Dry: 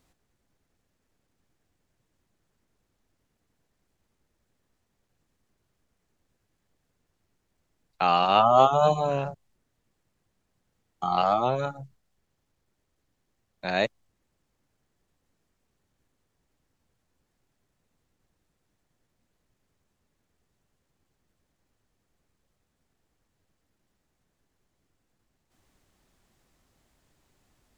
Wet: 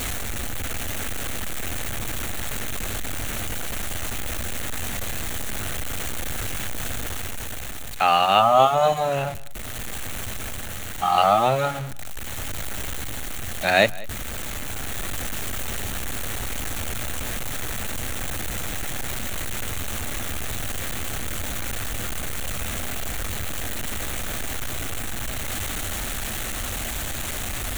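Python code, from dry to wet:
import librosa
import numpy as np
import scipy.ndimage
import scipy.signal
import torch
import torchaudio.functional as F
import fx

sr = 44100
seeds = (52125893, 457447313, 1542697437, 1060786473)

p1 = x + 0.5 * 10.0 ** (-32.0 / 20.0) * np.sign(x)
p2 = fx.graphic_eq_31(p1, sr, hz=(160, 1000, 5000), db=(-11, -7, -11))
p3 = fx.rider(p2, sr, range_db=10, speed_s=2.0)
p4 = p2 + F.gain(torch.from_numpy(p3), 1.0).numpy()
p5 = fx.peak_eq(p4, sr, hz=370.0, db=-8.0, octaves=1.4)
p6 = fx.hum_notches(p5, sr, base_hz=60, count=3)
p7 = p6 + 10.0 ** (-21.5 / 20.0) * np.pad(p6, (int(193 * sr / 1000.0), 0))[:len(p6)]
y = F.gain(torch.from_numpy(p7), 1.0).numpy()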